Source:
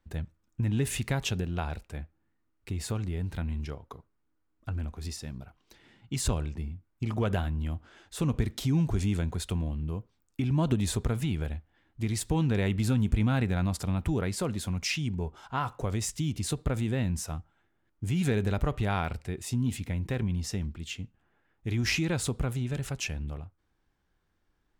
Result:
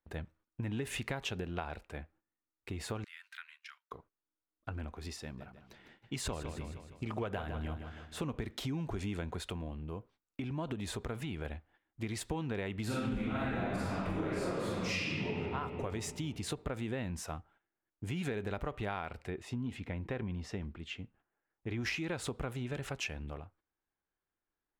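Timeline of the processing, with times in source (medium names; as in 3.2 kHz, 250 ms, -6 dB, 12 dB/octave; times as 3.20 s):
3.04–3.92 s: steep high-pass 1.4 kHz
5.22–8.25 s: feedback delay 156 ms, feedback 54%, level -11 dB
9.39–11.45 s: compression 1.5:1, threshold -35 dBFS
12.85–15.37 s: reverb throw, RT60 2.1 s, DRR -11.5 dB
19.30–21.81 s: low-pass 2.6 kHz 6 dB/octave
whole clip: gate -57 dBFS, range -14 dB; tone controls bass -10 dB, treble -10 dB; compression, threshold -35 dBFS; trim +1.5 dB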